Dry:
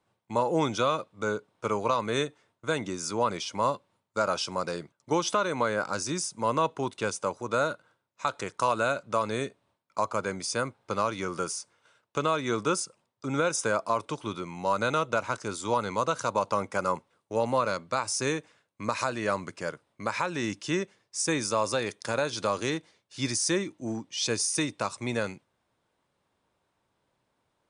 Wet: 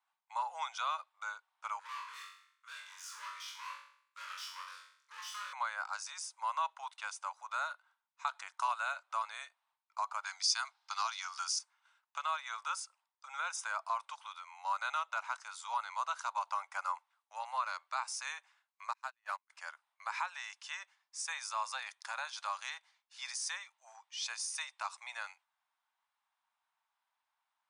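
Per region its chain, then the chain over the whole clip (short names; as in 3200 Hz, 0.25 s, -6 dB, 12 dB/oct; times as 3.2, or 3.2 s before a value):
1.79–5.53 tube stage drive 35 dB, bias 0.55 + Butterworth band-stop 730 Hz, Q 1.5 + flutter echo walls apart 3.7 m, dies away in 0.6 s
10.25–11.59 Chebyshev high-pass 650 Hz, order 10 + bell 5000 Hz +15 dB 1.2 oct
18.93–19.5 G.711 law mismatch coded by A + gate -29 dBFS, range -37 dB
whole clip: steep high-pass 780 Hz 48 dB/oct; high shelf 4600 Hz -6.5 dB; gain -6 dB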